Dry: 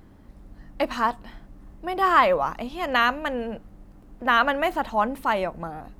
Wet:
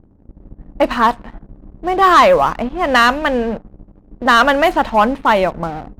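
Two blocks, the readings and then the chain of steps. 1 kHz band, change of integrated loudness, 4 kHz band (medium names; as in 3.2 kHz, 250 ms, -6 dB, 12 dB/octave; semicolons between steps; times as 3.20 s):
+9.5 dB, +9.5 dB, +10.0 dB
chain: level-controlled noise filter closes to 450 Hz, open at -18 dBFS; waveshaping leveller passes 2; trim +4 dB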